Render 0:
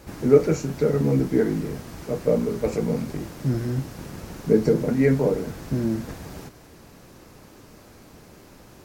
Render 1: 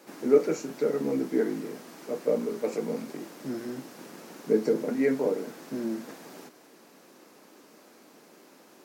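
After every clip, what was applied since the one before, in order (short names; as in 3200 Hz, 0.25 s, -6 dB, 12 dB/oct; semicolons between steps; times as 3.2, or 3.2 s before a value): HPF 230 Hz 24 dB/oct; gain -4.5 dB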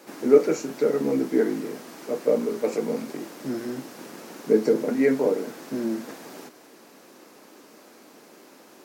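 bell 170 Hz -3.5 dB 0.36 oct; gain +4.5 dB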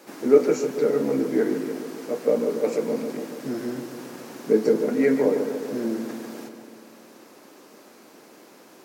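darkening echo 0.144 s, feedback 69%, low-pass 2300 Hz, level -8.5 dB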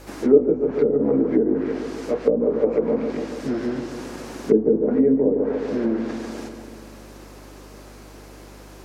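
hum 50 Hz, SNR 25 dB; treble ducked by the level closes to 420 Hz, closed at -17 dBFS; gain +4.5 dB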